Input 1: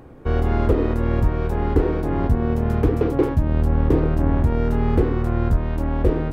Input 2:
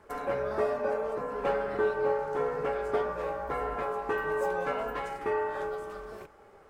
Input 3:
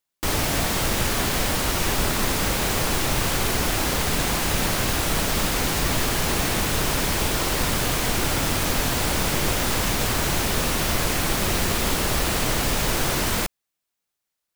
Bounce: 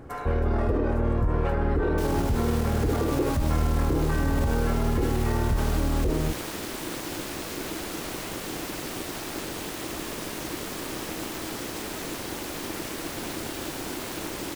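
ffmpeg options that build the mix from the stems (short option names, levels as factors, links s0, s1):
-filter_complex "[0:a]tiltshelf=f=970:g=3.5,volume=0.668[s0];[1:a]highpass=560,volume=1.41[s1];[2:a]aeval=exprs='val(0)*sin(2*PI*320*n/s)':c=same,adelay=1750,volume=0.376[s2];[s0][s1][s2]amix=inputs=3:normalize=0,alimiter=limit=0.15:level=0:latency=1:release=37"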